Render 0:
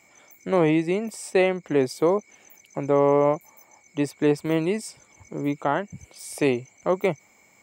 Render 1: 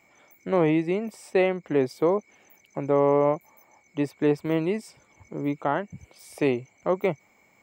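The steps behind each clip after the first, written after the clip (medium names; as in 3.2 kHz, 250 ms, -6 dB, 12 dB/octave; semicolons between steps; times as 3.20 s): peaking EQ 8.3 kHz -10 dB 1.6 oct; trim -1.5 dB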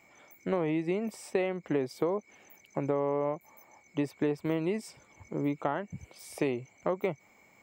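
compression 6:1, threshold -26 dBFS, peak gain reduction 10 dB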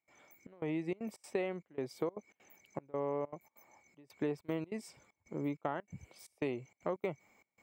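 trance gate ".xxxxx..xxxx.xx" 194 bpm -24 dB; trim -6 dB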